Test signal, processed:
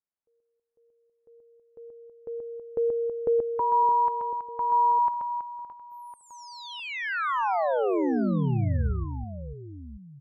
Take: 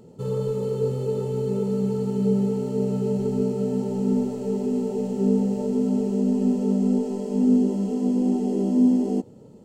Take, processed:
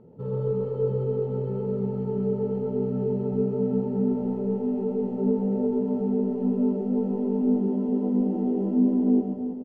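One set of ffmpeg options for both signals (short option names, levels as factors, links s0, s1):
-filter_complex "[0:a]lowpass=1400,asplit=2[s0][s1];[s1]aecho=0:1:130|325|617.5|1056|1714:0.631|0.398|0.251|0.158|0.1[s2];[s0][s2]amix=inputs=2:normalize=0,volume=0.668"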